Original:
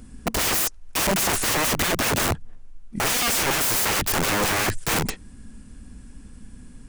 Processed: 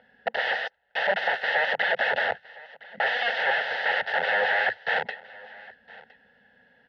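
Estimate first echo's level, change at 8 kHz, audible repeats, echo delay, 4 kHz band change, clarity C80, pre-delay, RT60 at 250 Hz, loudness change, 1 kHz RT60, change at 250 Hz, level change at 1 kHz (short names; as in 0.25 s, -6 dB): -21.5 dB, under -35 dB, 1, 1.013 s, -6.5 dB, none, none, none, -3.5 dB, none, -22.0 dB, -1.5 dB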